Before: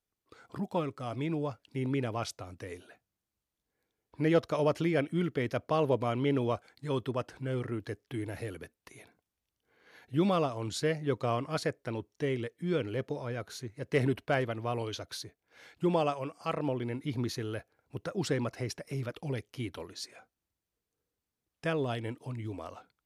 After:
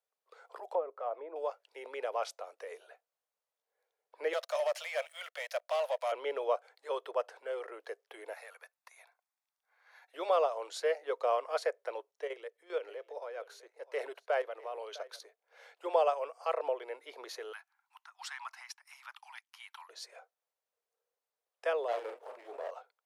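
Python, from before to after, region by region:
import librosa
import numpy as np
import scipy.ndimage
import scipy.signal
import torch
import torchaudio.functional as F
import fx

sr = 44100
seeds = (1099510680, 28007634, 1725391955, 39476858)

y = fx.chain(x, sr, fx.env_lowpass_down(base_hz=820.0, full_db=-31.5),
    fx.band_squash(depth_pct=40), at=(0.67, 1.36))
y = fx.chain(y, sr, fx.steep_highpass(hz=580.0, slope=72),
    fx.peak_eq(hz=990.0, db=-13.5, octaves=2.1),
    fx.leveller(passes=3), at=(4.33, 6.12))
y = fx.chain(y, sr, fx.highpass(hz=780.0, slope=24),
    fx.notch(hz=3000.0, q=6.4), at=(8.33, 10.14))
y = fx.chain(y, sr, fx.level_steps(step_db=10),
    fx.echo_single(ms=655, db=-19.0), at=(12.11, 15.24))
y = fx.chain(y, sr, fx.steep_highpass(hz=850.0, slope=72),
    fx.chopper(hz=1.5, depth_pct=65, duty_pct=80), at=(17.52, 19.89))
y = fx.chain(y, sr, fx.low_shelf(hz=270.0, db=6.5),
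    fx.doubler(ms=42.0, db=-5.5),
    fx.running_max(window=17), at=(21.88, 22.71))
y = scipy.signal.sosfilt(scipy.signal.butter(8, 480.0, 'highpass', fs=sr, output='sos'), y)
y = fx.tilt_shelf(y, sr, db=6.0, hz=1200.0)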